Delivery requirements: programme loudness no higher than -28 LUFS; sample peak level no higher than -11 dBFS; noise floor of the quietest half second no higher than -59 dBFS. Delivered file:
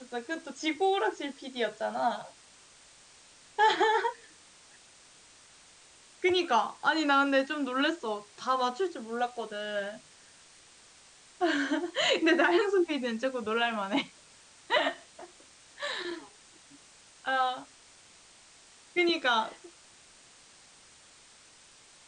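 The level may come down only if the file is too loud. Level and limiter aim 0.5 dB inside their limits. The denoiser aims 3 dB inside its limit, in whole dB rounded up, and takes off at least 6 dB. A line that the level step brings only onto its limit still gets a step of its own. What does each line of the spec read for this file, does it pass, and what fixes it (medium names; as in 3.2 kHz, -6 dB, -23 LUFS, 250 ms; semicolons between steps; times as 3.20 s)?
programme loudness -29.5 LUFS: pass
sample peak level -13.5 dBFS: pass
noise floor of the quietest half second -57 dBFS: fail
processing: noise reduction 6 dB, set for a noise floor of -57 dBFS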